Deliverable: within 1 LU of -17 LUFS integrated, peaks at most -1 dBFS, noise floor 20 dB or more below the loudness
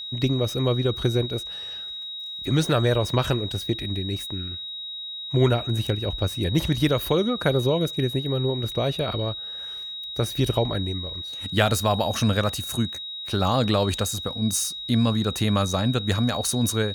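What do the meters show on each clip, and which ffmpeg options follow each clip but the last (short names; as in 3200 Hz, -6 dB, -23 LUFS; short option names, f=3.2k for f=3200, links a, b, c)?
steady tone 3800 Hz; tone level -32 dBFS; loudness -24.5 LUFS; peak -4.0 dBFS; loudness target -17.0 LUFS
-> -af "bandreject=f=3.8k:w=30"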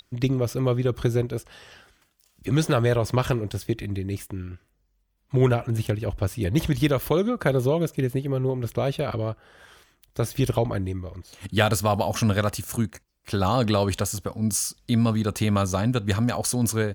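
steady tone none; loudness -25.0 LUFS; peak -4.0 dBFS; loudness target -17.0 LUFS
-> -af "volume=8dB,alimiter=limit=-1dB:level=0:latency=1"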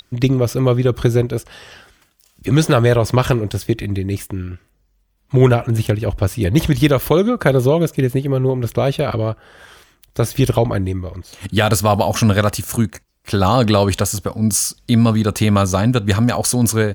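loudness -17.0 LUFS; peak -1.0 dBFS; noise floor -61 dBFS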